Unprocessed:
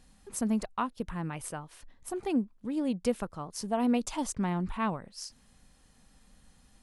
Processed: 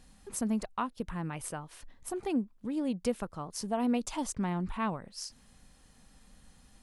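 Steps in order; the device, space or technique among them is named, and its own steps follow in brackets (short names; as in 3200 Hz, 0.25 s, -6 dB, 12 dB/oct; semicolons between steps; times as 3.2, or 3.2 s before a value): parallel compression (in parallel at -1.5 dB: compressor, threshold -40 dBFS, peak gain reduction 16.5 dB); on the sum: gain -3.5 dB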